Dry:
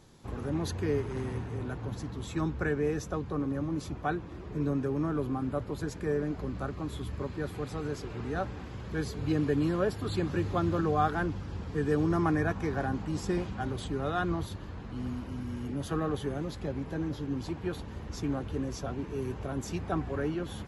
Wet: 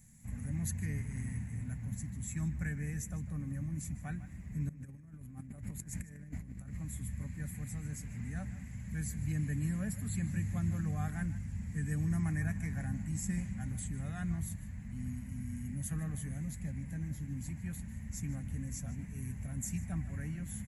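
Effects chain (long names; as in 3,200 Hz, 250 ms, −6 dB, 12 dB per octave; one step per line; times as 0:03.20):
drawn EQ curve 110 Hz 0 dB, 220 Hz +2 dB, 370 Hz −28 dB, 620 Hz −16 dB, 1,300 Hz −19 dB, 2,000 Hz +2 dB, 3,300 Hz −17 dB, 5,100 Hz −11 dB, 7,300 Hz +10 dB
0:04.69–0:06.77: compressor whose output falls as the input rises −42 dBFS, ratio −0.5
slap from a distant wall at 26 metres, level −15 dB
level −2 dB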